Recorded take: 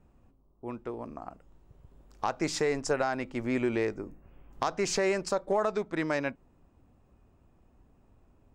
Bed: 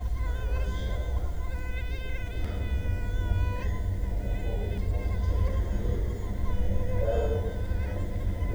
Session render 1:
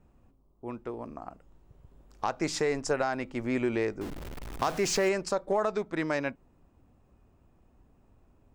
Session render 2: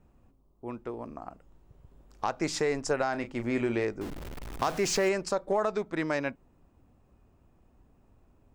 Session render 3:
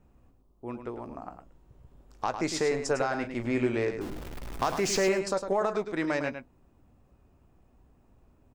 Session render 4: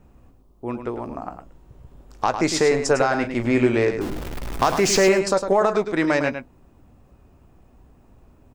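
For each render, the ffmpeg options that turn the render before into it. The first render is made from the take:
-filter_complex "[0:a]asettb=1/sr,asplit=3[a][b][c];[a]atrim=end=4.014[d];[b]atrim=start=4.01:end=5.09,asetpts=PTS-STARTPTS,afade=t=in:d=0.004:c=qsin,afade=t=out:st=1.076:d=0.004:c=qsin,aeval=exprs='val(0)+0.5*0.0178*sgn(val(0))':c=same[e];[c]atrim=start=5.086[f];[d][e]acrossfade=d=0.004:c1=hsin:c2=qsin[g];[g][f]acrossfade=d=0.004:c1=qsin:c2=hsin"
-filter_complex "[0:a]asettb=1/sr,asplit=3[a][b][c];[a]atrim=end=3.104[d];[b]atrim=start=3.1:end=3.84,asetpts=PTS-STARTPTS,afade=t=in:d=0.004:c=qsin,afade=t=out:st=0.736:d=0.004:c=qsin,asplit=2[e][f];[f]adelay=34,volume=-10dB[g];[e][g]amix=inputs=2:normalize=0,atrim=end_sample=32634[h];[c]atrim=start=3.836[i];[d][h]acrossfade=d=0.004:c1=hsin:c2=qsin[j];[j][i]acrossfade=d=0.004:c1=qsin:c2=hsin"
-filter_complex "[0:a]asplit=2[a][b];[b]adelay=16,volume=-14dB[c];[a][c]amix=inputs=2:normalize=0,asplit=2[d][e];[e]aecho=0:1:105:0.376[f];[d][f]amix=inputs=2:normalize=0"
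-af "volume=9dB"

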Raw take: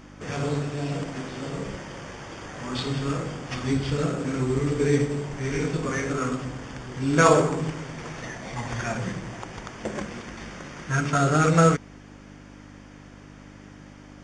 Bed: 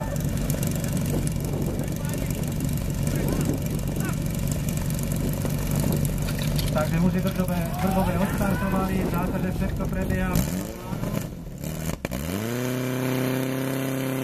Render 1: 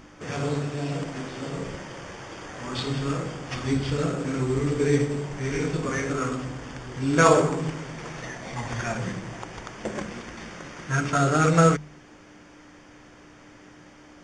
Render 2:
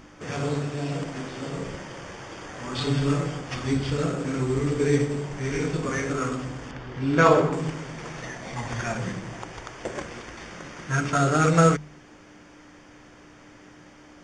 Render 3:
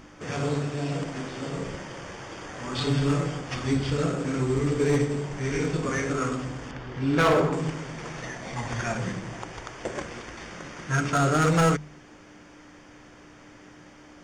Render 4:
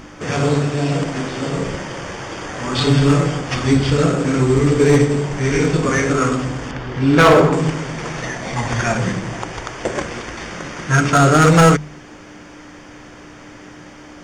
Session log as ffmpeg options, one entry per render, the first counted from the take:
-af "bandreject=f=50:t=h:w=4,bandreject=f=100:t=h:w=4,bandreject=f=150:t=h:w=4,bandreject=f=200:t=h:w=4,bandreject=f=250:t=h:w=4"
-filter_complex "[0:a]asettb=1/sr,asplit=3[a][b][c];[a]atrim=end=2.804[d];[b]atrim=start=2.8:end=3.41,asetpts=PTS-STARTPTS,afade=t=in:d=0.004:c=qsin,afade=t=out:st=0.606:d=0.004:c=qsin,aecho=1:1:6.9:0.78,atrim=end_sample=26901[e];[c]atrim=start=3.406[f];[d][e]acrossfade=d=0.004:c1=hsin:c2=qsin[g];[g][f]acrossfade=d=0.004:c1=qsin:c2=hsin,asettb=1/sr,asplit=3[h][i][j];[h]atrim=end=6.714[k];[i]atrim=start=6.71:end=7.53,asetpts=PTS-STARTPTS,afade=t=in:d=0.004:c=qsin,afade=t=out:st=0.816:d=0.004:c=qsin,lowpass=4k[l];[j]atrim=start=7.526[m];[k][l]acrossfade=d=0.004:c1=hsin:c2=qsin[n];[n][m]acrossfade=d=0.004:c1=qsin:c2=hsin,asettb=1/sr,asplit=3[o][p][q];[o]atrim=end=9.524[r];[p]atrim=start=9.52:end=10.52,asetpts=PTS-STARTPTS,afade=t=in:d=0.004:c=qsin,afade=t=out:st=0.996:d=0.004:c=qsin,equalizer=f=200:w=3.7:g=-12[s];[q]atrim=start=10.516[t];[r][s]acrossfade=d=0.004:c1=hsin:c2=qsin[u];[u][t]acrossfade=d=0.004:c1=qsin:c2=hsin"
-af "asoftclip=type=hard:threshold=-16.5dB"
-af "volume=10.5dB"

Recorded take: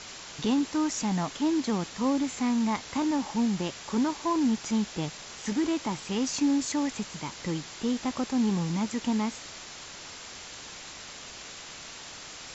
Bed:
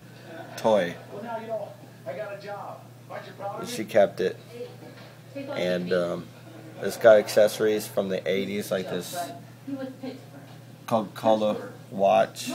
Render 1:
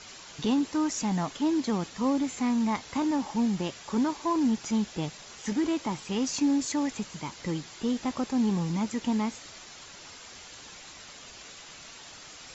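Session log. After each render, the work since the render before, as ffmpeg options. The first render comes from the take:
-af "afftdn=nr=6:nf=-44"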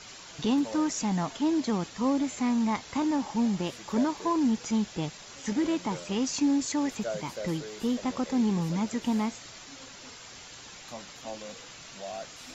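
-filter_complex "[1:a]volume=-19dB[a];[0:a][a]amix=inputs=2:normalize=0"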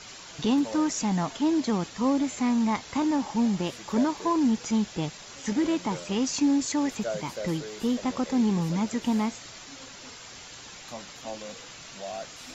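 -af "volume=2dB"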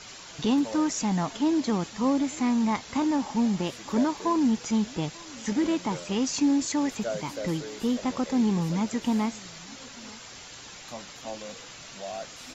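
-af "aecho=1:1:893:0.0668"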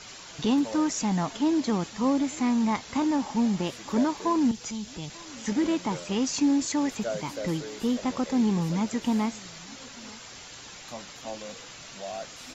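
-filter_complex "[0:a]asettb=1/sr,asplit=3[a][b][c];[a]atrim=end=4.514[d];[b]atrim=start=4.51:end=5.1,asetpts=PTS-STARTPTS,afade=t=in:d=0.004:c=qsin,afade=t=out:st=0.586:d=0.004:c=qsin,acrossover=split=120|3000[e][f][g];[f]acompressor=threshold=-44dB:ratio=2:attack=3.2:release=140:knee=2.83:detection=peak[h];[e][h][g]amix=inputs=3:normalize=0[i];[c]atrim=start=5.096[j];[d][i]acrossfade=d=0.004:c1=hsin:c2=qsin[k];[k][j]acrossfade=d=0.004:c1=qsin:c2=hsin"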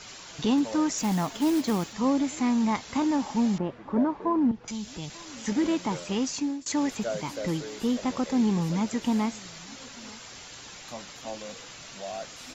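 -filter_complex "[0:a]asettb=1/sr,asplit=3[a][b][c];[a]atrim=end=0.984[d];[b]atrim=start=0.98:end=1.93,asetpts=PTS-STARTPTS,afade=t=in:d=0.004:c=qsin,afade=t=out:st=0.946:d=0.004:c=qsin,acrusher=bits=4:mode=log:mix=0:aa=0.000001[e];[c]atrim=start=1.926[f];[d][e]acrossfade=d=0.004:c1=hsin:c2=qsin[g];[g][f]acrossfade=d=0.004:c1=qsin:c2=hsin,asettb=1/sr,asplit=3[h][i][j];[h]atrim=end=3.584[k];[i]atrim=start=3.58:end=4.68,asetpts=PTS-STARTPTS,afade=t=in:d=0.004:c=qsin,afade=t=out:st=1.096:d=0.004:c=qsin,lowpass=1.3k[l];[j]atrim=start=4.676[m];[k][l]acrossfade=d=0.004:c1=hsin:c2=qsin[n];[n][m]acrossfade=d=0.004:c1=qsin:c2=hsin,asplit=2[o][p];[o]atrim=end=6.66,asetpts=PTS-STARTPTS,afade=t=out:st=5.99:d=0.67:c=qsin:silence=0.0668344[q];[p]atrim=start=6.66,asetpts=PTS-STARTPTS,afade=t=in:d=0.004:c=hsin:silence=0.0668344[r];[q][r]concat=n=2:v=0:a=1"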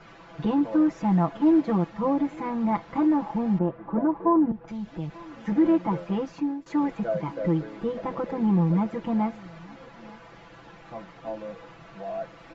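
-af "lowpass=1.4k,aecho=1:1:6:0.98"

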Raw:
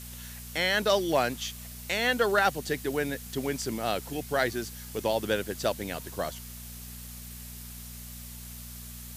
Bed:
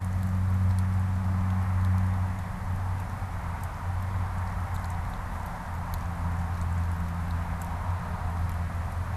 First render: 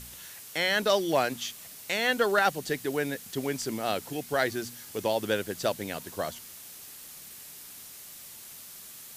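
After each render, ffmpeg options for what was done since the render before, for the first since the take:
-af "bandreject=f=60:t=h:w=4,bandreject=f=120:t=h:w=4,bandreject=f=180:t=h:w=4,bandreject=f=240:t=h:w=4"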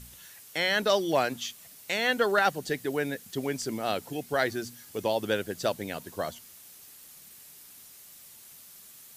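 -af "afftdn=nr=6:nf=-46"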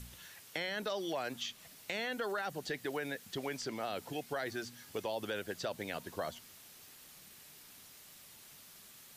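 -filter_complex "[0:a]alimiter=limit=-21dB:level=0:latency=1:release=31,acrossover=split=540|5100[a][b][c];[a]acompressor=threshold=-43dB:ratio=4[d];[b]acompressor=threshold=-37dB:ratio=4[e];[c]acompressor=threshold=-57dB:ratio=4[f];[d][e][f]amix=inputs=3:normalize=0"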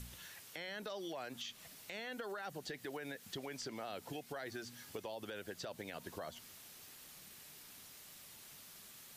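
-af "alimiter=level_in=6.5dB:limit=-24dB:level=0:latency=1:release=136,volume=-6.5dB,acompressor=threshold=-44dB:ratio=2"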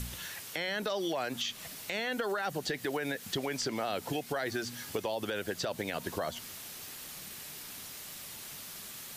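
-af "volume=11dB"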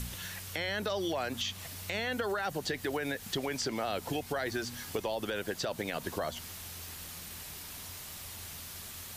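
-filter_complex "[1:a]volume=-23.5dB[a];[0:a][a]amix=inputs=2:normalize=0"

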